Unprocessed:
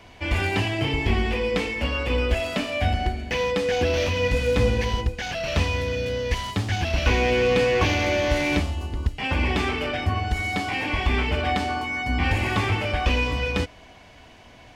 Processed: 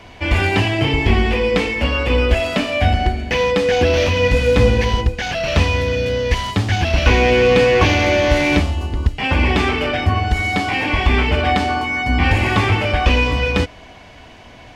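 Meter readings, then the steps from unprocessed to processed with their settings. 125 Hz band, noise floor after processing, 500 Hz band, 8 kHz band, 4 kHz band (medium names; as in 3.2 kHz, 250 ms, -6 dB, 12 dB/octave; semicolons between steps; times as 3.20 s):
+7.5 dB, -41 dBFS, +7.5 dB, +5.0 dB, +6.5 dB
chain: treble shelf 7.6 kHz -6 dB; trim +7.5 dB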